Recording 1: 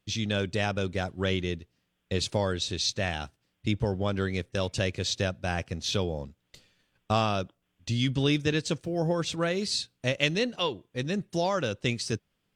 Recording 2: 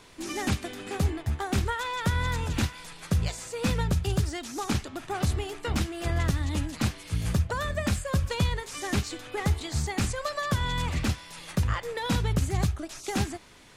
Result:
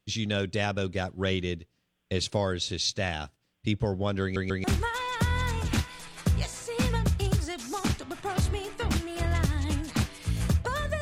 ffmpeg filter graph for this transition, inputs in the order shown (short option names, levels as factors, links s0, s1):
-filter_complex "[0:a]apad=whole_dur=11.01,atrim=end=11.01,asplit=3[s0][s1][s2];[s0]atrim=end=4.362[s3];[s1]atrim=start=4.218:end=4.362[s4];[s2]atrim=start=4.218:end=4.362[s5];[1:a]atrim=start=1.488:end=7.86[s6];[s3][s4]acrossfade=d=0.004:c1=hsin:c2=hsin[s7];[s7][s5]acrossfade=d=0.004:c1=hsin:c2=hsin[s8];[s8][s6]acrossfade=d=0.004:c1=hsin:c2=hsin"